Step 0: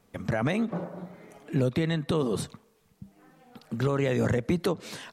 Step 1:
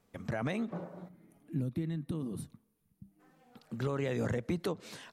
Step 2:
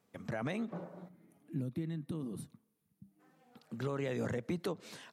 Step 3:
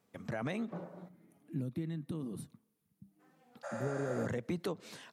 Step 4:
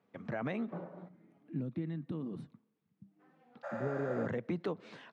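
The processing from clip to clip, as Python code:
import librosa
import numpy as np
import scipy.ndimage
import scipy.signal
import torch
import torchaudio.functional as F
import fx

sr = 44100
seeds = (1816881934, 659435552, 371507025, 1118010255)

y1 = fx.spec_box(x, sr, start_s=1.08, length_s=2.12, low_hz=360.0, high_hz=8800.0, gain_db=-12)
y1 = y1 * 10.0 ** (-7.5 / 20.0)
y2 = scipy.signal.sosfilt(scipy.signal.butter(2, 110.0, 'highpass', fs=sr, output='sos'), y1)
y2 = y2 * 10.0 ** (-2.5 / 20.0)
y3 = fx.spec_repair(y2, sr, seeds[0], start_s=3.66, length_s=0.55, low_hz=520.0, high_hz=11000.0, source='after')
y4 = fx.bandpass_edges(y3, sr, low_hz=120.0, high_hz=2700.0)
y4 = y4 * 10.0 ** (1.0 / 20.0)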